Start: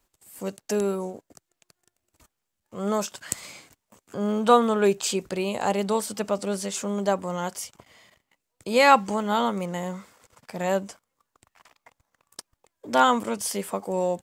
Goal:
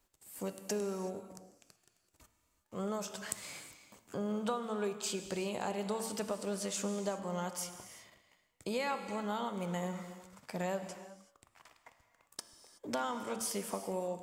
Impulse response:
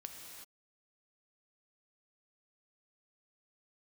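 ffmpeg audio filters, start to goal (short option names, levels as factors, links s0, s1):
-filter_complex "[0:a]bandreject=f=113.1:t=h:w=4,bandreject=f=226.2:t=h:w=4,bandreject=f=339.3:t=h:w=4,bandreject=f=452.4:t=h:w=4,bandreject=f=565.5:t=h:w=4,bandreject=f=678.6:t=h:w=4,bandreject=f=791.7:t=h:w=4,bandreject=f=904.8:t=h:w=4,bandreject=f=1017.9:t=h:w=4,bandreject=f=1131:t=h:w=4,bandreject=f=1244.1:t=h:w=4,bandreject=f=1357.2:t=h:w=4,bandreject=f=1470.3:t=h:w=4,bandreject=f=1583.4:t=h:w=4,bandreject=f=1696.5:t=h:w=4,bandreject=f=1809.6:t=h:w=4,bandreject=f=1922.7:t=h:w=4,bandreject=f=2035.8:t=h:w=4,bandreject=f=2148.9:t=h:w=4,bandreject=f=2262:t=h:w=4,bandreject=f=2375.1:t=h:w=4,bandreject=f=2488.2:t=h:w=4,bandreject=f=2601.3:t=h:w=4,bandreject=f=2714.4:t=h:w=4,bandreject=f=2827.5:t=h:w=4,bandreject=f=2940.6:t=h:w=4,bandreject=f=3053.7:t=h:w=4,bandreject=f=3166.8:t=h:w=4,bandreject=f=3279.9:t=h:w=4,bandreject=f=3393:t=h:w=4,bandreject=f=3506.1:t=h:w=4,bandreject=f=3619.2:t=h:w=4,acompressor=threshold=0.0316:ratio=6,asplit=2[s0][s1];[1:a]atrim=start_sample=2205[s2];[s1][s2]afir=irnorm=-1:irlink=0,volume=1.41[s3];[s0][s3]amix=inputs=2:normalize=0,volume=0.376"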